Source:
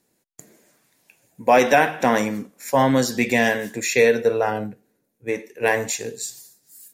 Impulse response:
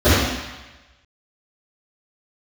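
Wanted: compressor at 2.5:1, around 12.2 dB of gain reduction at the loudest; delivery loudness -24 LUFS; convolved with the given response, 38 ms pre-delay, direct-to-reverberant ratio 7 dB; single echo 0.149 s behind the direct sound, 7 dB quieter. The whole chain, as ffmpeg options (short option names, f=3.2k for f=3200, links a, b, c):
-filter_complex "[0:a]acompressor=threshold=-30dB:ratio=2.5,aecho=1:1:149:0.447,asplit=2[a][b];[1:a]atrim=start_sample=2205,adelay=38[c];[b][c]afir=irnorm=-1:irlink=0,volume=-34dB[d];[a][d]amix=inputs=2:normalize=0,volume=4dB"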